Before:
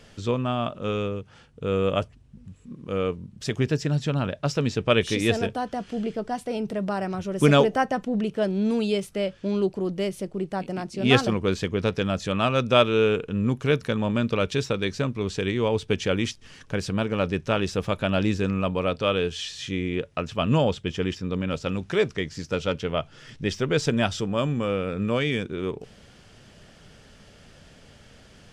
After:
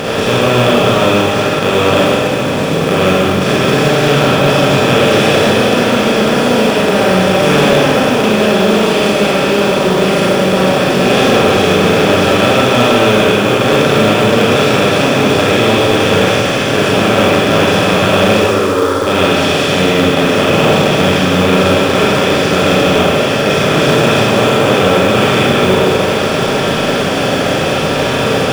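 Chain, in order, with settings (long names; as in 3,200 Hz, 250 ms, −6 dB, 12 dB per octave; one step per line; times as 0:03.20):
compressor on every frequency bin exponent 0.2
0:18.35–0:19.07: phaser with its sweep stopped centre 690 Hz, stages 6
four-comb reverb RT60 2.1 s, combs from 33 ms, DRR −6.5 dB
log-companded quantiser 6 bits
level −3.5 dB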